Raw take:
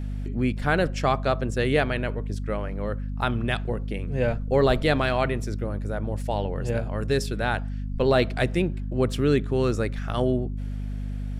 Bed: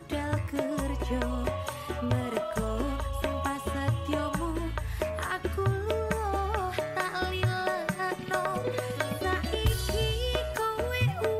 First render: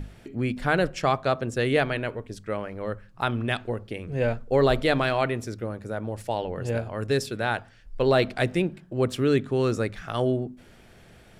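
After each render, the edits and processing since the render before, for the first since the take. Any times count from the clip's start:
mains-hum notches 50/100/150/200/250 Hz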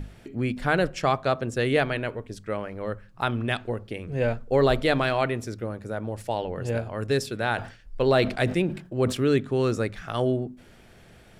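0:07.40–0:09.32: level that may fall only so fast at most 120 dB per second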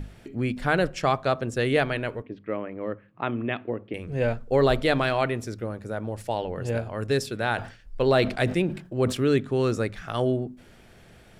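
0:02.22–0:03.94: loudspeaker in its box 150–2,700 Hz, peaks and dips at 300 Hz +6 dB, 830 Hz −4 dB, 1,500 Hz −6 dB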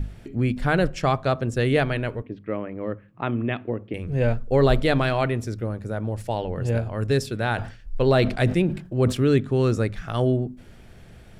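low-shelf EQ 180 Hz +9.5 dB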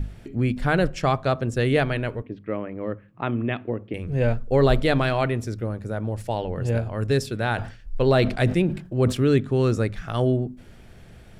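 no processing that can be heard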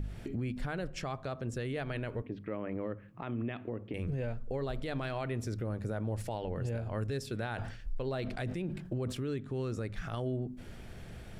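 downward compressor 10 to 1, threshold −30 dBFS, peak gain reduction 17 dB
brickwall limiter −27 dBFS, peak gain reduction 10.5 dB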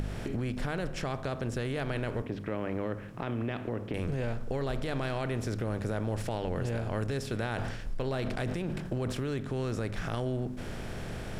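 compressor on every frequency bin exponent 0.6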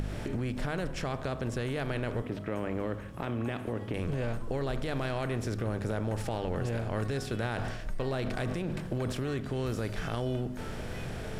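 mix in bed −18.5 dB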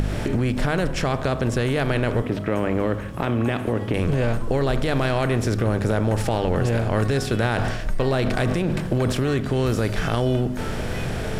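level +11 dB

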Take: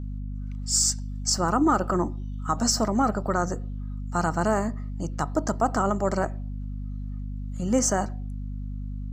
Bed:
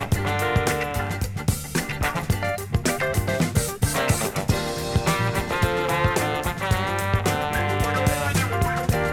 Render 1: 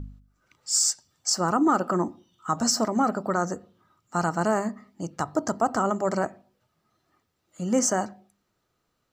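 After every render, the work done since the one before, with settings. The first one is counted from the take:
hum removal 50 Hz, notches 5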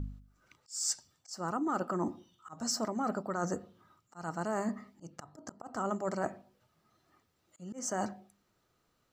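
reversed playback
downward compressor 5 to 1, threshold −31 dBFS, peak gain reduction 12.5 dB
reversed playback
volume swells 198 ms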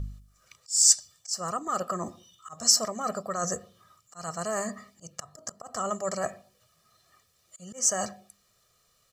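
parametric band 9,100 Hz +14 dB 2.8 octaves
comb filter 1.7 ms, depth 68%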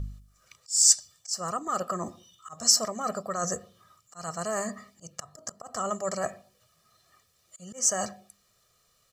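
no processing that can be heard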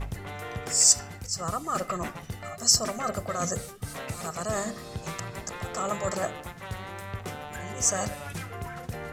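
mix in bed −14.5 dB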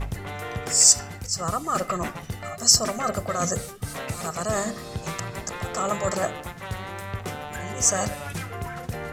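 level +4 dB
brickwall limiter −2 dBFS, peak gain reduction 2 dB

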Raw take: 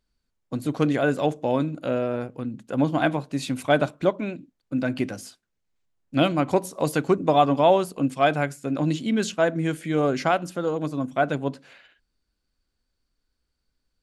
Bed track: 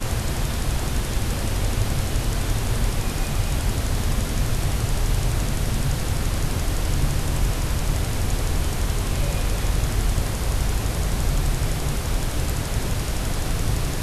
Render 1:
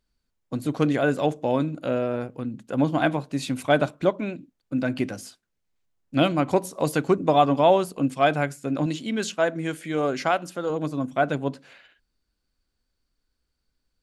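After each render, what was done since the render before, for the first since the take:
0:08.86–0:10.70: low-shelf EQ 260 Hz −8 dB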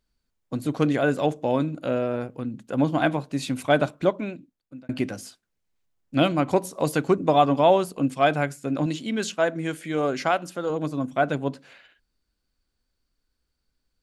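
0:04.14–0:04.89: fade out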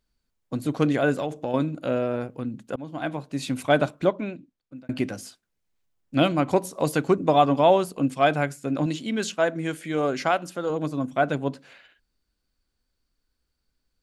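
0:01.13–0:01.54: downward compressor, threshold −23 dBFS
0:02.76–0:03.53: fade in, from −22.5 dB
0:04.06–0:04.76: high-frequency loss of the air 54 metres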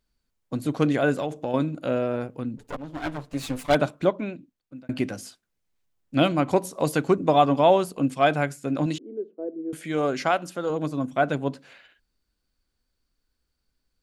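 0:02.57–0:03.75: lower of the sound and its delayed copy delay 6.9 ms
0:08.98–0:09.73: flat-topped band-pass 380 Hz, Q 2.4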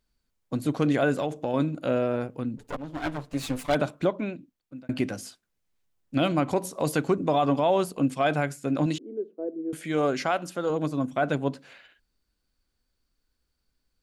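brickwall limiter −13.5 dBFS, peak gain reduction 7.5 dB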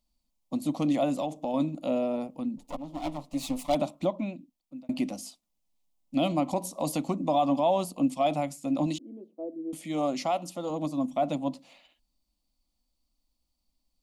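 phaser with its sweep stopped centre 420 Hz, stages 6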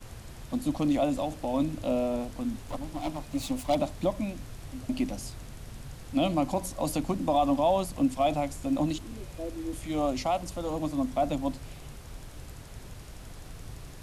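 mix in bed track −20 dB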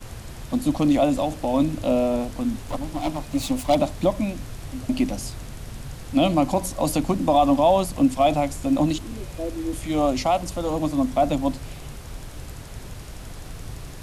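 level +7 dB

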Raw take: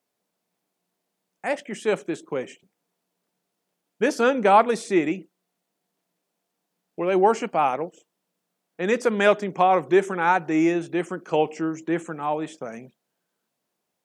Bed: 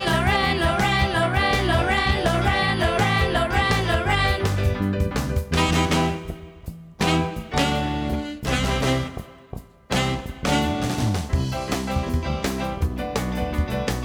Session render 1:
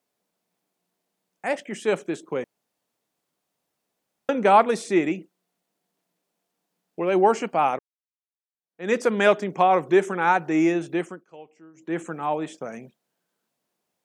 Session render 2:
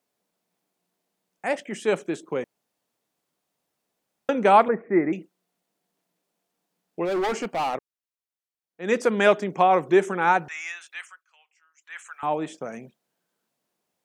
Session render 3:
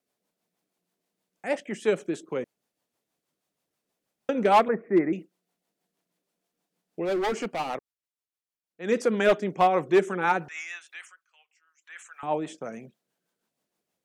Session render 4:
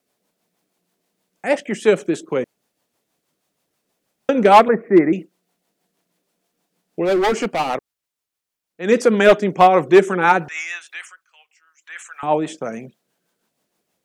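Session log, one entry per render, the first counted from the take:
0:02.44–0:04.29: fill with room tone; 0:07.79–0:08.92: fade in exponential; 0:10.96–0:12.03: duck −23 dB, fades 0.29 s
0:04.68–0:05.13: Butterworth low-pass 2,100 Hz 72 dB per octave; 0:07.05–0:07.75: gain into a clipping stage and back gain 22.5 dB; 0:10.48–0:12.23: high-pass filter 1,300 Hz 24 dB per octave
rotating-speaker cabinet horn 6.3 Hz; hard clipping −13 dBFS, distortion −17 dB
level +9.5 dB

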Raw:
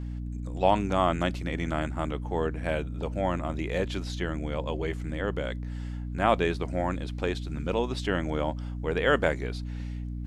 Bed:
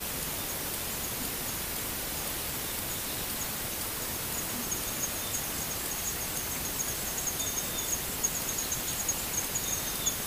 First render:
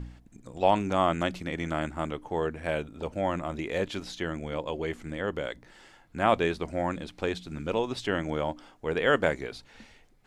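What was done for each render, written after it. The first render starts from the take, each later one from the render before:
hum removal 60 Hz, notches 5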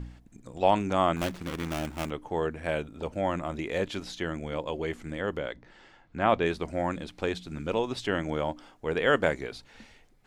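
0:01.16–0:02.10: gap after every zero crossing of 0.29 ms
0:05.38–0:06.46: high-frequency loss of the air 110 metres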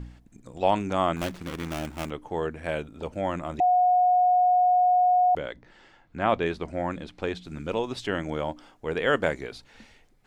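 0:03.60–0:05.35: beep over 725 Hz −17 dBFS
0:06.44–0:07.45: high-shelf EQ 7,800 Hz −11 dB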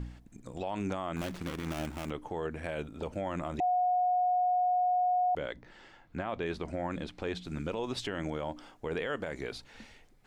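downward compressor, threshold −24 dBFS, peak gain reduction 8 dB
brickwall limiter −24.5 dBFS, peak gain reduction 11.5 dB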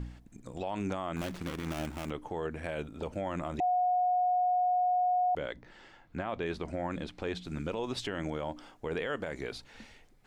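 no processing that can be heard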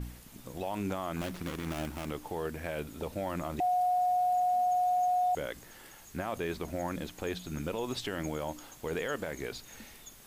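mix in bed −21 dB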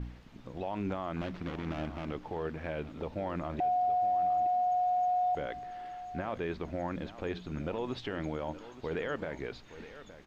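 high-frequency loss of the air 220 metres
single-tap delay 868 ms −14.5 dB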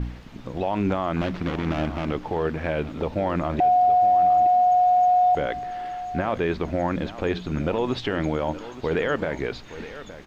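level +11 dB

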